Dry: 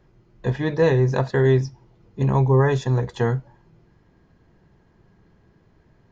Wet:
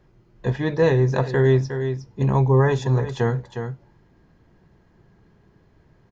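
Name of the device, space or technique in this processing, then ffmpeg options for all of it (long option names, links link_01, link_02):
ducked delay: -filter_complex "[0:a]asplit=3[link_01][link_02][link_03];[link_02]adelay=360,volume=-8dB[link_04];[link_03]apad=whole_len=285443[link_05];[link_04][link_05]sidechaincompress=threshold=-25dB:ratio=8:attack=5.7:release=168[link_06];[link_01][link_06]amix=inputs=2:normalize=0"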